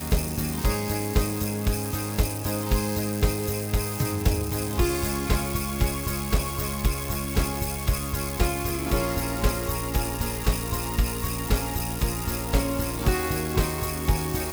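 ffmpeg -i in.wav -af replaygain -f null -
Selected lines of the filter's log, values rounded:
track_gain = +10.4 dB
track_peak = 0.231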